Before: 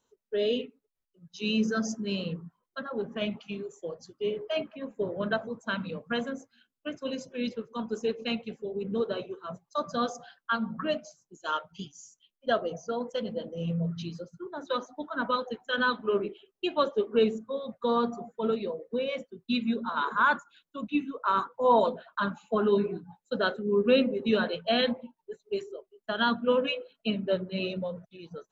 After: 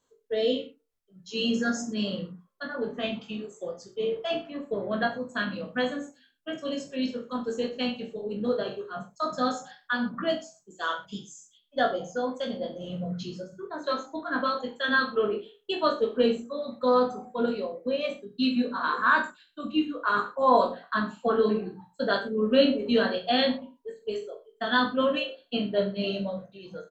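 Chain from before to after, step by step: varispeed +6%; reverse bouncing-ball echo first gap 20 ms, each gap 1.1×, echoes 5

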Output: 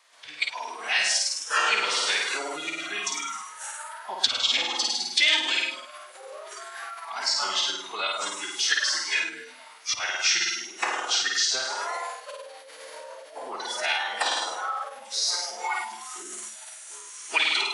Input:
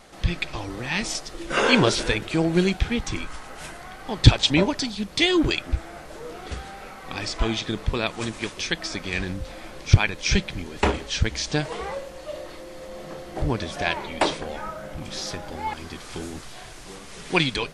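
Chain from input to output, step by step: flutter echo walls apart 8.9 m, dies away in 1.1 s; spectral noise reduction 14 dB; in parallel at +1.5 dB: limiter -11 dBFS, peak gain reduction 9 dB; on the sum: compressor 2.5:1, threshold -18 dBFS, peak gain reduction 10.5 dB; formant-preserving pitch shift -2.5 st; HPF 1200 Hz 12 dB/oct

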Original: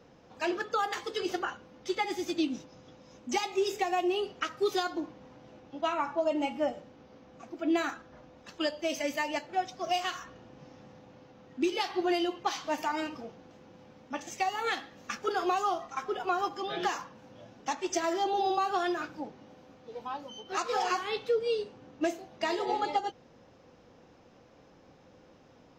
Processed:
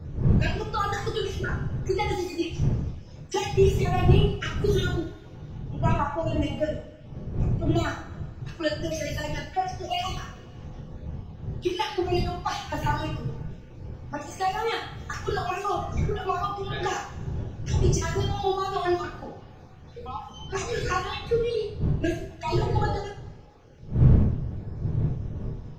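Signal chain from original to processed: random spectral dropouts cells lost 39%; wind noise 120 Hz -34 dBFS; two-slope reverb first 0.48 s, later 1.8 s, from -19 dB, DRR -2.5 dB

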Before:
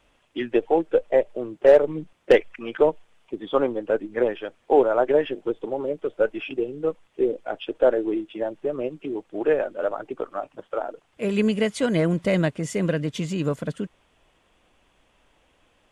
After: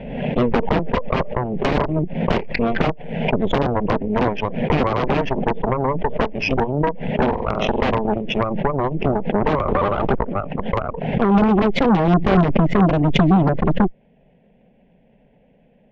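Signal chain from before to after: wrapped overs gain 14.5 dB; 2.36–2.88 doubler 30 ms -10 dB; 7.23–7.91 flutter echo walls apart 7.9 m, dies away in 0.38 s; 9.68–10.17 sample leveller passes 5; LPF 2200 Hz 24 dB/oct; bell 1200 Hz -12.5 dB 0.5 oct; fixed phaser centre 320 Hz, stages 6; compressor 4:1, threshold -34 dBFS, peak gain reduction 14 dB; bell 190 Hz +14.5 dB 2.3 oct; added harmonics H 8 -9 dB, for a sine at -12 dBFS; backwards sustainer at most 48 dB/s; gain +5 dB

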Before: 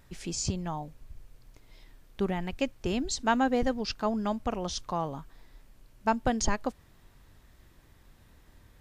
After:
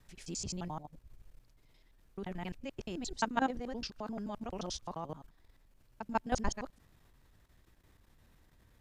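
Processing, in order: local time reversal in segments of 87 ms; level quantiser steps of 12 dB; gain -3.5 dB

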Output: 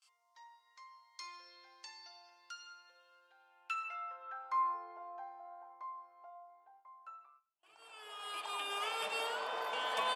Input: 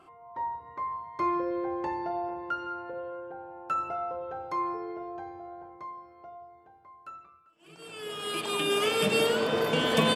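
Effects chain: gate with hold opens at -48 dBFS; differentiator; band-pass sweep 5300 Hz -> 850 Hz, 3.09–4.83; gain +15 dB

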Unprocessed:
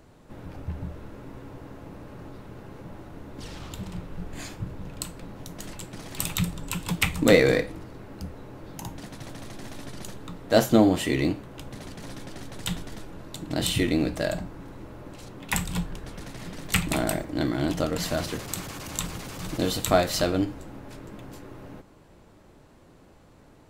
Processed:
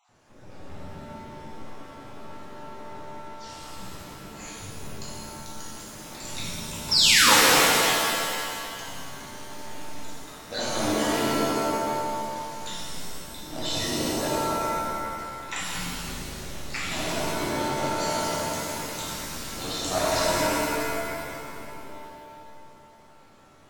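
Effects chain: random spectral dropouts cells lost 39%; low shelf 380 Hz -9 dB; painted sound fall, 6.91–7.34, 780–5700 Hz -17 dBFS; in parallel at -8.5 dB: wrapped overs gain 21.5 dB; on the sum: tone controls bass +1 dB, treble +6 dB; on a send: analogue delay 0.167 s, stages 1024, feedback 60%, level -4 dB; on the sum: downsampling 16000 Hz; shimmer reverb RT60 2 s, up +7 st, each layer -2 dB, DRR -7.5 dB; gain -10.5 dB

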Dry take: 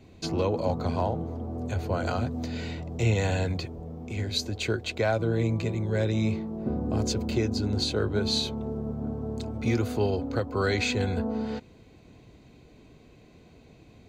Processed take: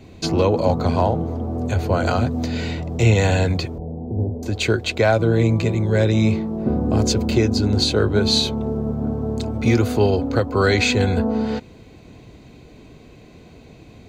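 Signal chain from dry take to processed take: 3.78–4.43 steep low-pass 890 Hz 48 dB/oct; gain +9 dB

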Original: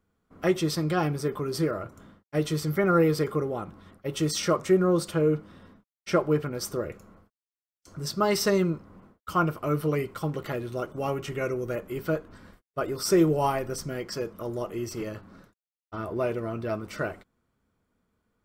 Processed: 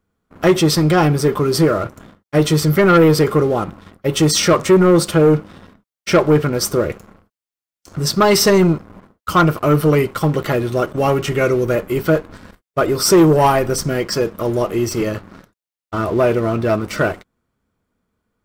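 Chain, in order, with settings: sample leveller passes 2; gain +6.5 dB

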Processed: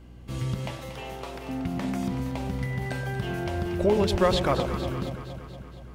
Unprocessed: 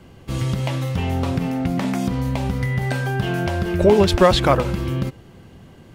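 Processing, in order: 0.71–1.49 HPF 380 Hz 24 dB/oct; hum 60 Hz, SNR 20 dB; echo with dull and thin repeats by turns 0.117 s, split 870 Hz, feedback 78%, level -8 dB; gain -8.5 dB

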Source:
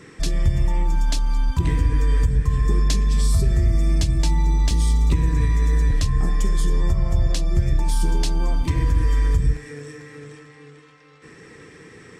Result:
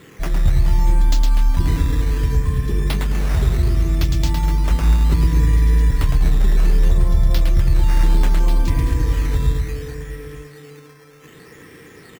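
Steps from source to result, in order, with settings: reverse bouncing-ball echo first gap 0.11 s, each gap 1.25×, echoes 5; decimation with a swept rate 8×, swing 100% 0.66 Hz

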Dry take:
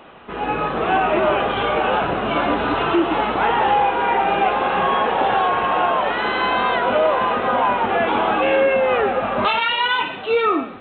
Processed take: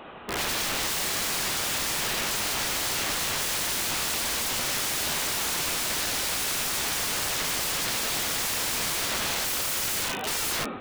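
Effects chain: 2.12–4.19 Bessel high-pass 260 Hz, order 2; wrapped overs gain 23.5 dB

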